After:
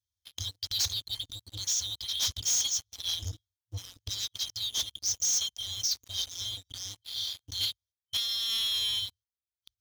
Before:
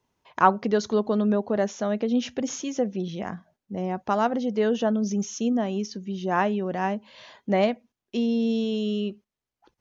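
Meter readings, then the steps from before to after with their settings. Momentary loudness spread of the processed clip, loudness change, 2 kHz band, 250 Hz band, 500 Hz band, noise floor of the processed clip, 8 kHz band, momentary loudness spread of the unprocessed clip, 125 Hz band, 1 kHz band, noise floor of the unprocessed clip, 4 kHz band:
13 LU, −4.5 dB, −14.0 dB, −36.5 dB, −35.5 dB, below −85 dBFS, can't be measured, 10 LU, −9.5 dB, −29.0 dB, below −85 dBFS, +12.0 dB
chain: brick-wall band-stop 110–3,100 Hz
de-essing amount 50%
high-pass filter 45 Hz 12 dB per octave
parametric band 170 Hz −2 dB 0.83 octaves
leveller curve on the samples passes 5

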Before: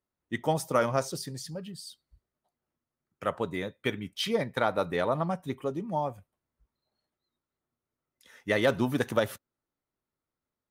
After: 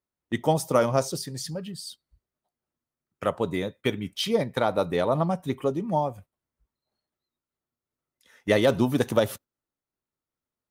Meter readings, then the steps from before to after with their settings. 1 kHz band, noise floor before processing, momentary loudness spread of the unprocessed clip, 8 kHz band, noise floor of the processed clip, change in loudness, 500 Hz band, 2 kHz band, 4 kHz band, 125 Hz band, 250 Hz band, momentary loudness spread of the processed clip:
+3.0 dB, below −85 dBFS, 13 LU, +4.5 dB, below −85 dBFS, +4.0 dB, +4.5 dB, 0.0 dB, +3.5 dB, +5.5 dB, +5.0 dB, 11 LU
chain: noise gate −49 dBFS, range −8 dB
dynamic equaliser 1,700 Hz, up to −7 dB, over −44 dBFS, Q 1.2
amplitude modulation by smooth noise, depth 50%
level +8 dB

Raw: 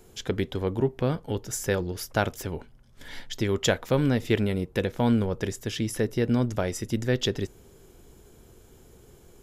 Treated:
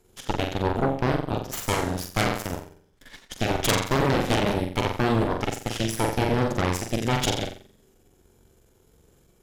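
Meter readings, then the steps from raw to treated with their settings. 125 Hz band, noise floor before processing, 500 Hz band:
+1.0 dB, −54 dBFS, +0.5 dB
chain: flutter between parallel walls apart 7.6 metres, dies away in 0.76 s
harmonic generator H 3 −6 dB, 5 −12 dB, 7 −22 dB, 8 −17 dB, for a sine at −7 dBFS
level +4.5 dB

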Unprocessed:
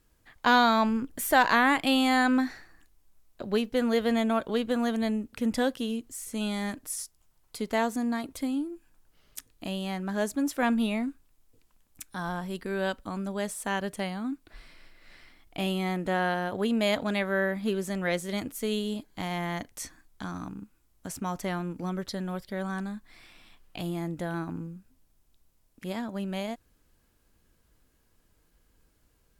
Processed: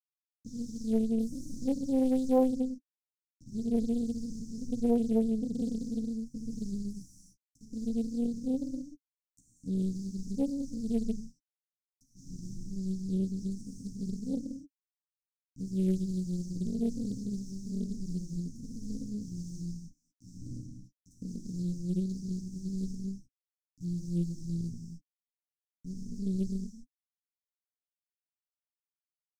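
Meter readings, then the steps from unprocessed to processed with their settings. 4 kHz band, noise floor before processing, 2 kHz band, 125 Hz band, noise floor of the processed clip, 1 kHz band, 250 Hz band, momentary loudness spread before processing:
−20.5 dB, −68 dBFS, below −35 dB, +1.0 dB, below −85 dBFS, below −15 dB, −2.0 dB, 17 LU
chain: loose part that buzzes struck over −37 dBFS, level −20 dBFS
dynamic equaliser 270 Hz, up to −3 dB, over −36 dBFS, Q 2.8
leveller curve on the samples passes 1
all-pass phaser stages 6, 2.6 Hz, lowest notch 210–2,200 Hz
bit reduction 5 bits
multi-voice chorus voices 6, 0.15 Hz, delay 12 ms, depth 5 ms
Chebyshev band-stop filter 280–5,700 Hz, order 5
high-frequency loss of the air 170 metres
reverb whose tail is shaped and stops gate 320 ms flat, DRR −5 dB
highs frequency-modulated by the lows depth 0.91 ms
level −3.5 dB

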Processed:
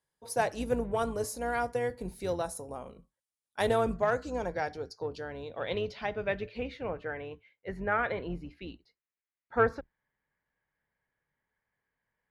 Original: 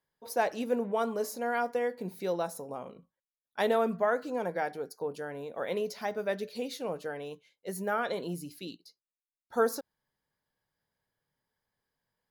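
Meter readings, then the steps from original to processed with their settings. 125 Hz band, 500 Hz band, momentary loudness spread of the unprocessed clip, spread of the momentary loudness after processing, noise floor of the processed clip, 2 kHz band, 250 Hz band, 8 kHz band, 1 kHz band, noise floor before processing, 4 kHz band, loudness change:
+5.5 dB, −0.5 dB, 13 LU, 15 LU, below −85 dBFS, +2.0 dB, −1.0 dB, +0.5 dB, 0.0 dB, below −85 dBFS, −0.5 dB, 0.0 dB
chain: sub-octave generator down 2 octaves, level −4 dB
harmonic generator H 7 −32 dB, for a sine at −12.5 dBFS
low-pass filter sweep 9,600 Hz → 2,100 Hz, 0:03.64–0:06.81

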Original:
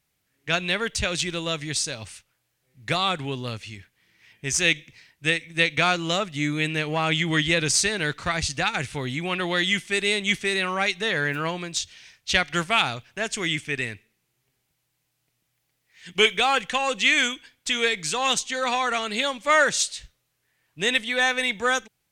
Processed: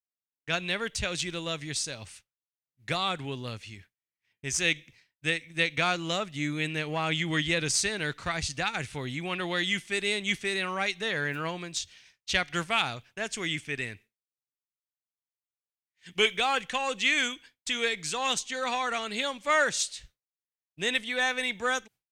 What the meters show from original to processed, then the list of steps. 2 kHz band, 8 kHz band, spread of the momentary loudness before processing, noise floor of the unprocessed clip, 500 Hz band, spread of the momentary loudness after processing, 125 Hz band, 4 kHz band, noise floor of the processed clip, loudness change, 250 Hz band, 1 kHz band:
−5.5 dB, −5.5 dB, 10 LU, −75 dBFS, −5.5 dB, 10 LU, −5.5 dB, −5.5 dB, below −85 dBFS, −5.5 dB, −5.5 dB, −5.5 dB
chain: downward expander −43 dBFS
level −5.5 dB

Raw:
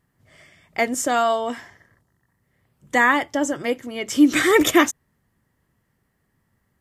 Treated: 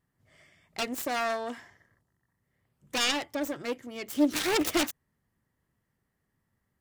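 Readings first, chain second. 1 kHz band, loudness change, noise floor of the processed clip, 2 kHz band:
−12.0 dB, −10.0 dB, −80 dBFS, −12.5 dB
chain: phase distortion by the signal itself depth 0.52 ms
level −9 dB

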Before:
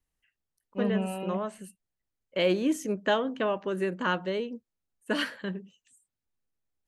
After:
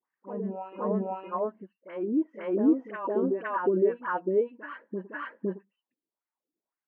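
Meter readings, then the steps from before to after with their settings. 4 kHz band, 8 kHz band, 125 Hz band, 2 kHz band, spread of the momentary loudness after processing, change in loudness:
below −20 dB, below −35 dB, can't be measured, −5.5 dB, 14 LU, +0.5 dB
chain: reverb reduction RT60 0.82 s
low-shelf EQ 370 Hz +8 dB
brickwall limiter −24 dBFS, peak gain reduction 12 dB
loudspeaker in its box 200–2,400 Hz, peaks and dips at 200 Hz +5 dB, 340 Hz +6 dB, 980 Hz +7 dB
all-pass dispersion highs, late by 55 ms, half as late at 1,100 Hz
auto-filter band-pass sine 1.8 Hz 290–1,800 Hz
backwards echo 511 ms −4 dB
level +7.5 dB

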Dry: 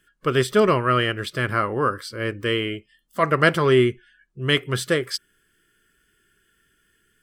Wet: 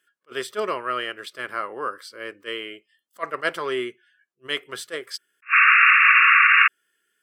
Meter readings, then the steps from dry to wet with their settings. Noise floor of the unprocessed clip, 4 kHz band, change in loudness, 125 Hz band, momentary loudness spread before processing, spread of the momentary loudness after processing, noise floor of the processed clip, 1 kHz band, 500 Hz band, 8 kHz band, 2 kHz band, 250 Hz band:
−67 dBFS, −2.0 dB, +5.0 dB, −27.0 dB, 12 LU, 22 LU, −75 dBFS, +2.5 dB, −9.5 dB, −5.5 dB, +9.5 dB, −13.5 dB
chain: high-pass filter 450 Hz 12 dB per octave
sound drawn into the spectrogram noise, 0:05.42–0:06.68, 1,100–2,800 Hz −9 dBFS
level that may rise only so fast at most 430 dB per second
level −5.5 dB

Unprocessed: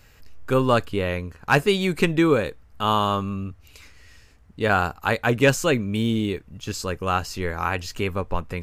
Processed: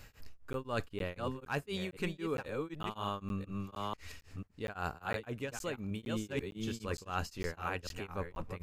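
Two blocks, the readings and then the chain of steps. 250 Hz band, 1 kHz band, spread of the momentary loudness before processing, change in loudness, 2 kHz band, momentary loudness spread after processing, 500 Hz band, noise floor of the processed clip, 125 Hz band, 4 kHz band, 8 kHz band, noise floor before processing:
−15.5 dB, −16.0 dB, 11 LU, −16.0 dB, −16.5 dB, 6 LU, −16.0 dB, −60 dBFS, −15.0 dB, −15.5 dB, −15.0 dB, −53 dBFS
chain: delay that plays each chunk backwards 492 ms, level −5.5 dB
reversed playback
downward compressor 6 to 1, threshold −33 dBFS, peak gain reduction 19 dB
reversed playback
regular buffer underruns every 0.46 s, samples 512, zero, from 0:00.53
tremolo along a rectified sine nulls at 3.9 Hz

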